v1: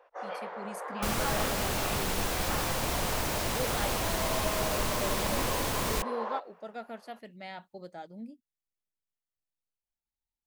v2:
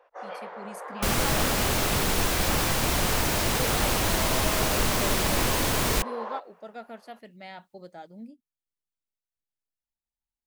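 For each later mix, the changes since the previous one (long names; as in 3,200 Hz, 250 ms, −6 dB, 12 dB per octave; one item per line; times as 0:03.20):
second sound +6.5 dB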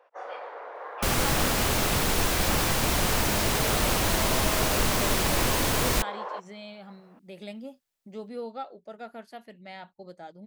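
speech: entry +2.25 s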